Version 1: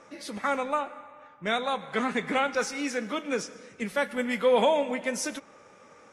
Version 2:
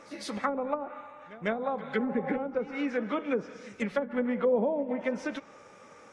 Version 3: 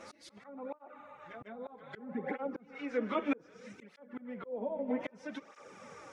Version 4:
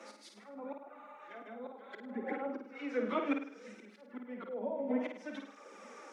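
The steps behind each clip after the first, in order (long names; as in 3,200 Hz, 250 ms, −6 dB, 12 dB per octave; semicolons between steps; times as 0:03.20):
treble cut that deepens with the level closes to 430 Hz, closed at −22.5 dBFS; echo ahead of the sound 151 ms −18 dB; healed spectral selection 0:01.86–0:02.36, 500–1,300 Hz both; level +1 dB
volume swells 782 ms; through-zero flanger with one copy inverted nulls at 0.63 Hz, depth 7 ms; level +4.5 dB
Butterworth high-pass 200 Hz 96 dB per octave; on a send: flutter between parallel walls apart 8.9 metres, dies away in 0.51 s; on the sum: level −1.5 dB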